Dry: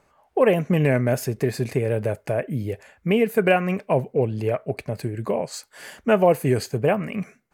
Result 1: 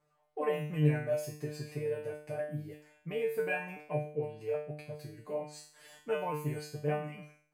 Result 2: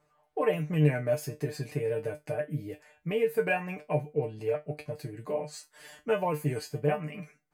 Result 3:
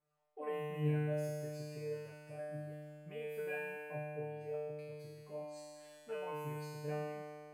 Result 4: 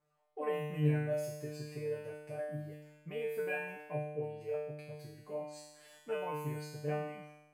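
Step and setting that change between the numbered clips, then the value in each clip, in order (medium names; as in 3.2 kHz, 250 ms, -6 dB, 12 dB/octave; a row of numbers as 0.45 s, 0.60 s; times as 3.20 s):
feedback comb, decay: 0.5 s, 0.17 s, 2.2 s, 1 s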